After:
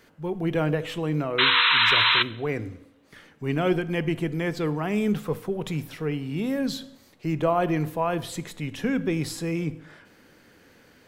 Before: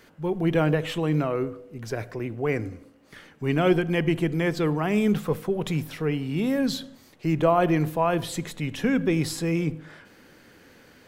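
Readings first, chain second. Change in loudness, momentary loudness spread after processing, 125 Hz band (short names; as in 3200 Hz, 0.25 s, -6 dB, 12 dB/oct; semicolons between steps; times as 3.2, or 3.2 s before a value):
+1.0 dB, 16 LU, -2.5 dB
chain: painted sound noise, 1.38–2.23, 910–4100 Hz -17 dBFS; two-slope reverb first 0.75 s, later 2.3 s, from -25 dB, DRR 17.5 dB; gain -2.5 dB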